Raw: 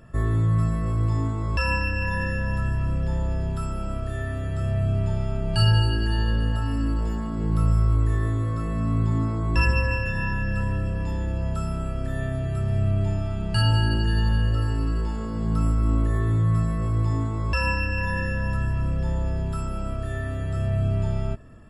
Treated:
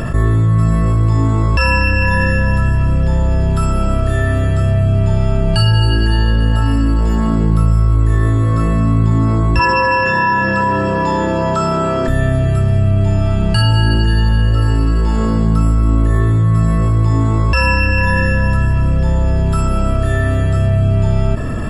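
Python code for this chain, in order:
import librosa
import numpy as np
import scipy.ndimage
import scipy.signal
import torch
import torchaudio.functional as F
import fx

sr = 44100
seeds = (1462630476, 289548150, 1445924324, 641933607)

y = fx.cabinet(x, sr, low_hz=230.0, low_slope=12, high_hz=7400.0, hz=(250.0, 360.0, 1000.0, 2600.0), db=(-4, 4, 9, -5), at=(9.59, 12.08))
y = fx.env_flatten(y, sr, amount_pct=70)
y = y * 10.0 ** (5.5 / 20.0)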